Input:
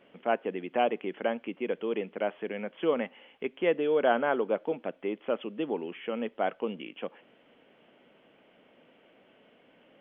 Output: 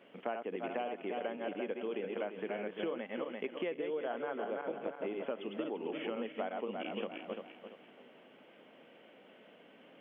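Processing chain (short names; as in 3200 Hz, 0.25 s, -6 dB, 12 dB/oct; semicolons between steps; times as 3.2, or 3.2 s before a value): regenerating reverse delay 0.171 s, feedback 55%, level -4.5 dB; HPF 150 Hz 12 dB/oct; compressor 12:1, threshold -34 dBFS, peak gain reduction 17 dB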